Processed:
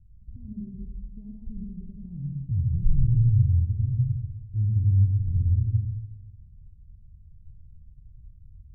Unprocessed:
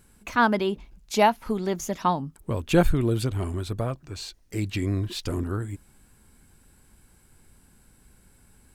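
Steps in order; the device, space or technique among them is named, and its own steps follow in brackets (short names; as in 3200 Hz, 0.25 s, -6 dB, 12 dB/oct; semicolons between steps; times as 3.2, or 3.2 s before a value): club heard from the street (limiter -18 dBFS, peak gain reduction 11 dB; LPF 120 Hz 24 dB/oct; reverb RT60 1.4 s, pre-delay 70 ms, DRR -1 dB); gain +7.5 dB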